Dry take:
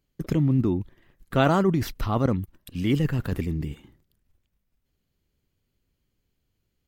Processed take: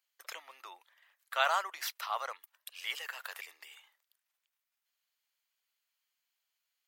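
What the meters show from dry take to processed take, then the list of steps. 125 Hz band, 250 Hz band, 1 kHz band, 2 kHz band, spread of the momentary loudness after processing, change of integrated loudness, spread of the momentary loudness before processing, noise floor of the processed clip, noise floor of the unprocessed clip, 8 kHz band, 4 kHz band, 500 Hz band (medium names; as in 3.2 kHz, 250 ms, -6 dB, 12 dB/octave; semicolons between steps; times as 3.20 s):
under -40 dB, under -40 dB, -5.0 dB, -1.5 dB, 22 LU, -11.0 dB, 10 LU, under -85 dBFS, -77 dBFS, 0.0 dB, -0.5 dB, -16.0 dB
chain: Bessel high-pass 1.2 kHz, order 8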